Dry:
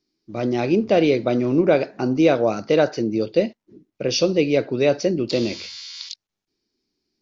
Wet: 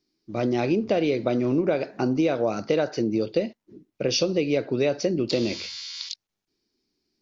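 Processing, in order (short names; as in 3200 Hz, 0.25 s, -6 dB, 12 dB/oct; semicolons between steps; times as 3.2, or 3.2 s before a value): compressor, threshold -19 dBFS, peak gain reduction 8.5 dB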